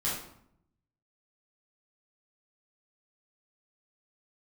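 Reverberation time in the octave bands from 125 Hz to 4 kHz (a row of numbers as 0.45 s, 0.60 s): 1.1 s, 0.95 s, 0.70 s, 0.70 s, 0.55 s, 0.50 s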